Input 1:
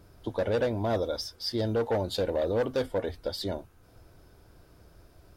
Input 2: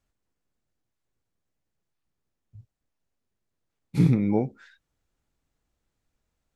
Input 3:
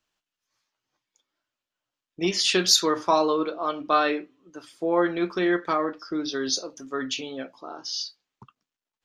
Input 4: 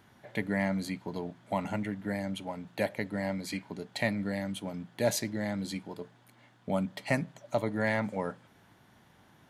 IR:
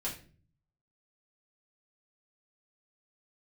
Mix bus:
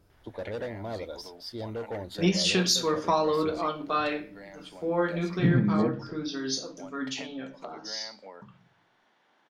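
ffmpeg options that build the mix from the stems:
-filter_complex "[0:a]volume=0.398,asplit=2[s0][s1];[1:a]lowpass=1900,adelay=1450,volume=0.631,asplit=2[s2][s3];[s3]volume=0.447[s4];[2:a]equalizer=f=180:t=o:w=0.32:g=13.5,volume=0.631,asplit=2[s5][s6];[s6]volume=0.531[s7];[3:a]acrossover=split=250 5900:gain=0.126 1 0.0794[s8][s9][s10];[s8][s9][s10]amix=inputs=3:normalize=0,acompressor=threshold=0.0126:ratio=6,lowshelf=f=200:g=-11,adelay=100,volume=0.708[s11];[s1]apad=whole_len=398704[s12];[s5][s12]sidechaingate=range=0.398:threshold=0.00178:ratio=16:detection=peak[s13];[4:a]atrim=start_sample=2205[s14];[s4][s7]amix=inputs=2:normalize=0[s15];[s15][s14]afir=irnorm=-1:irlink=0[s16];[s0][s2][s13][s11][s16]amix=inputs=5:normalize=0,alimiter=limit=0.224:level=0:latency=1:release=431"

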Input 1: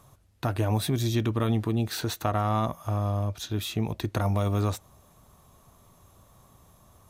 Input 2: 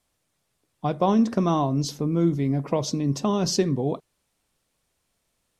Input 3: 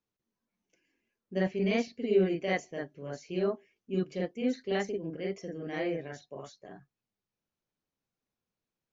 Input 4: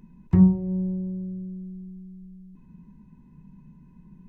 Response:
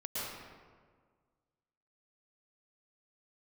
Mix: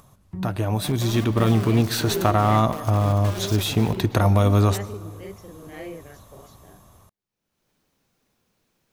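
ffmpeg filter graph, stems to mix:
-filter_complex "[0:a]dynaudnorm=f=470:g=5:m=2.37,volume=1,asplit=2[s0][s1];[s1]volume=0.119[s2];[1:a]acrossover=split=180|3000[s3][s4][s5];[s4]acompressor=threshold=0.0501:ratio=6[s6];[s3][s6][s5]amix=inputs=3:normalize=0,acrusher=bits=3:mix=0:aa=0.000001,volume=0.251,asplit=2[s7][s8];[s8]volume=0.376[s9];[2:a]volume=0.631[s10];[3:a]volume=0.168[s11];[4:a]atrim=start_sample=2205[s12];[s2][s9]amix=inputs=2:normalize=0[s13];[s13][s12]afir=irnorm=-1:irlink=0[s14];[s0][s7][s10][s11][s14]amix=inputs=5:normalize=0,acompressor=mode=upward:threshold=0.00282:ratio=2.5"

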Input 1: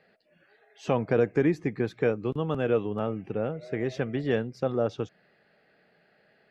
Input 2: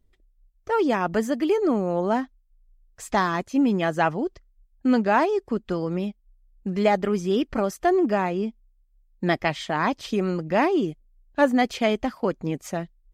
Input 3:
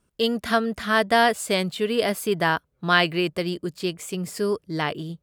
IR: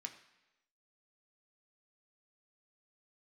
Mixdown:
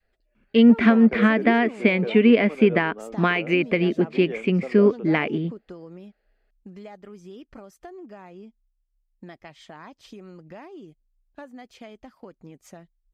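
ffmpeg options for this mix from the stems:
-filter_complex "[0:a]highpass=f=220:w=0.5412,highpass=f=220:w=1.3066,volume=0.237[s0];[1:a]acompressor=threshold=0.0355:ratio=5,volume=0.282[s1];[2:a]lowpass=f=2300:t=q:w=6.3,acompressor=threshold=0.1:ratio=6,equalizer=f=230:w=2.2:g=14.5,adelay=350,volume=0.841[s2];[s0][s1][s2]amix=inputs=3:normalize=0,adynamicequalizer=threshold=0.0141:dfrequency=430:dqfactor=0.77:tfrequency=430:tqfactor=0.77:attack=5:release=100:ratio=0.375:range=3.5:mode=boostabove:tftype=bell"

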